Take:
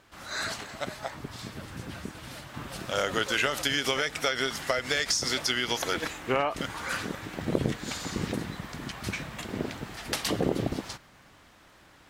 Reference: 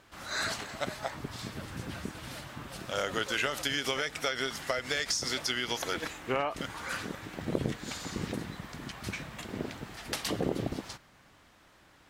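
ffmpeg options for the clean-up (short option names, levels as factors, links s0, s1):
-af "adeclick=t=4,asetnsamples=n=441:p=0,asendcmd='2.54 volume volume -4dB',volume=1"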